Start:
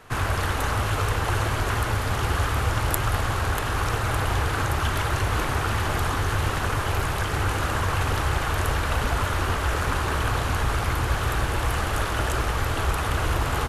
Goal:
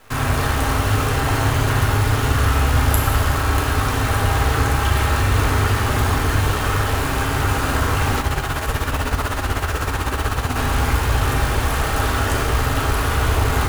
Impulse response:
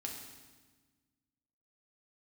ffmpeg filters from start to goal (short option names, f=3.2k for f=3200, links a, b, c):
-filter_complex "[1:a]atrim=start_sample=2205,asetrate=43659,aresample=44100[a];[0:a][a]afir=irnorm=-1:irlink=0,acrusher=bits=7:dc=4:mix=0:aa=0.000001,asettb=1/sr,asplit=3[b][c][d];[b]atrim=end=8.204[e];[c]atrim=start=8.2:end=10.56,asetpts=PTS-STARTPTS,afade=t=in:d=0.004:c=qsin,afade=t=out:st=2.356:d=0.004:c=qsin,tremolo=f=16:d=0.6[f];[d]atrim=start=10.556[g];[e][f]acrossfade=d=0.004:c1=hsin:c2=qsin[h];[h][g]acrossfade=d=0.004:c1=qsin:c2=hsin,volume=6dB"